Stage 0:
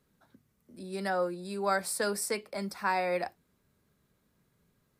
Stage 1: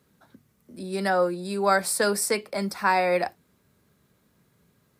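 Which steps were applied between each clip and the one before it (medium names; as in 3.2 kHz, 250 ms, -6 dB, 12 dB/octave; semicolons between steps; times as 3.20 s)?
high-pass 63 Hz; trim +7.5 dB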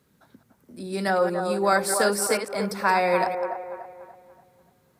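chunks repeated in reverse 108 ms, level -9 dB; on a send: feedback echo behind a band-pass 290 ms, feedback 39%, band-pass 710 Hz, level -5.5 dB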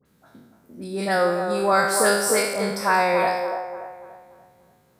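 spectral sustain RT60 0.86 s; phase dispersion highs, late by 54 ms, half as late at 1.6 kHz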